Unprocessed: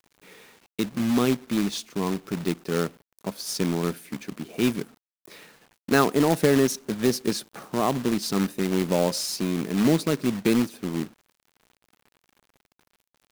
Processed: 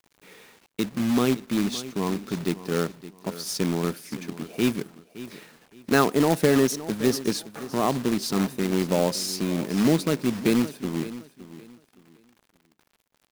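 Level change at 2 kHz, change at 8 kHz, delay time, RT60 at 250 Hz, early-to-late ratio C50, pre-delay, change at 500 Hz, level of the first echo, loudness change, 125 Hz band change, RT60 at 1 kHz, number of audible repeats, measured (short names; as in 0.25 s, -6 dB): 0.0 dB, 0.0 dB, 0.566 s, none, none, none, 0.0 dB, -15.5 dB, 0.0 dB, 0.0 dB, none, 2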